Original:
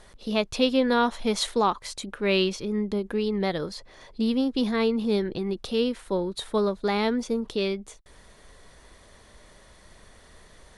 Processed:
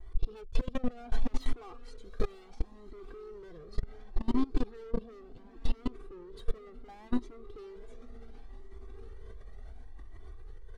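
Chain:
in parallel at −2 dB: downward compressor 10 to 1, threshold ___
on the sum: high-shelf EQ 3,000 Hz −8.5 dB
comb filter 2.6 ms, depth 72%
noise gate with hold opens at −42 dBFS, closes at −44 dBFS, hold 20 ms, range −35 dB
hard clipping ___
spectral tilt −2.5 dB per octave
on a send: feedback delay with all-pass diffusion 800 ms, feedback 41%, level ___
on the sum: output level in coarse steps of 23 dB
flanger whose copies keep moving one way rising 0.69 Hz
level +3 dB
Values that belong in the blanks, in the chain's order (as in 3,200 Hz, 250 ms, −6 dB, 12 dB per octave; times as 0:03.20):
−35 dBFS, −27.5 dBFS, −10 dB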